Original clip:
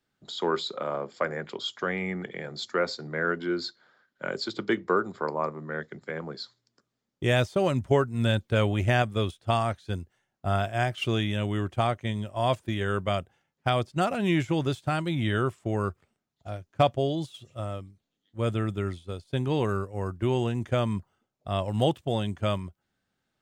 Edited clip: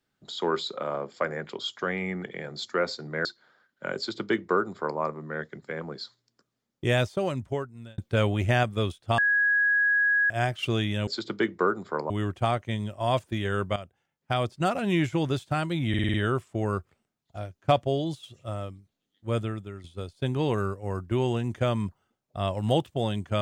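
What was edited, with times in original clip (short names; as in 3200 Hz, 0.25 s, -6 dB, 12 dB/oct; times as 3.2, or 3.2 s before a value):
3.25–3.64 cut
4.36–5.39 copy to 11.46
7.28–8.37 fade out
9.57–10.69 bleep 1660 Hz -19.5 dBFS
13.12–13.89 fade in, from -13 dB
15.25 stutter 0.05 s, 6 plays
18.47–18.95 fade out quadratic, to -11.5 dB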